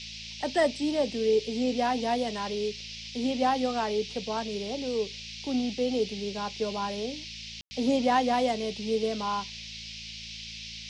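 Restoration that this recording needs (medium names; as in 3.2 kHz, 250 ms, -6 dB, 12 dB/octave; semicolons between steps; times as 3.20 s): de-hum 55.6 Hz, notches 4; room tone fill 7.61–7.71 s; noise print and reduce 30 dB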